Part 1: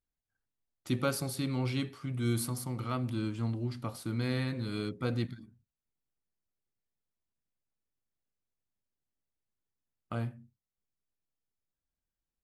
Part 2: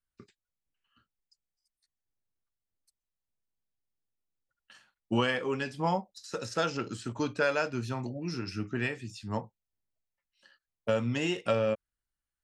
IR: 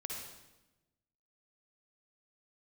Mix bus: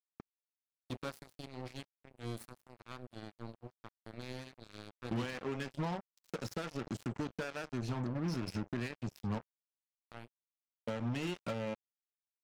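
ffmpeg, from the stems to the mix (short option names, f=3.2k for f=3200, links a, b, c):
-filter_complex "[0:a]volume=-9dB[a];[1:a]highshelf=f=10k:g=-7,acompressor=threshold=-36dB:ratio=8,equalizer=f=160:w=0.6:g=7.5,volume=0dB[b];[a][b]amix=inputs=2:normalize=0,asoftclip=type=tanh:threshold=-32.5dB,acrusher=bits=5:mix=0:aa=0.5"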